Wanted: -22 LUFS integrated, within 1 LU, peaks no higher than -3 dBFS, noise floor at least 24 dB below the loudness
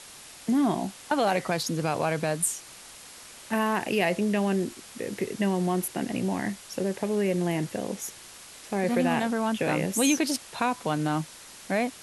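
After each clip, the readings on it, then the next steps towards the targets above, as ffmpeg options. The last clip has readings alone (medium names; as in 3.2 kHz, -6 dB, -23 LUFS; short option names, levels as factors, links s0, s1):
noise floor -47 dBFS; noise floor target -52 dBFS; loudness -27.5 LUFS; peak level -10.5 dBFS; loudness target -22.0 LUFS
-> -af "afftdn=nr=6:nf=-47"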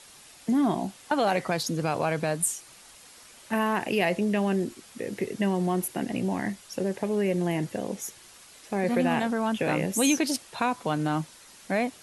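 noise floor -51 dBFS; noise floor target -52 dBFS
-> -af "afftdn=nr=6:nf=-51"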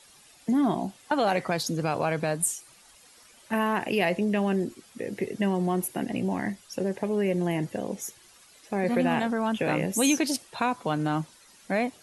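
noise floor -56 dBFS; loudness -27.5 LUFS; peak level -11.0 dBFS; loudness target -22.0 LUFS
-> -af "volume=1.88"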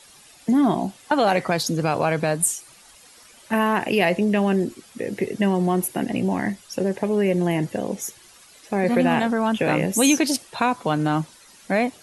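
loudness -22.0 LUFS; peak level -5.5 dBFS; noise floor -50 dBFS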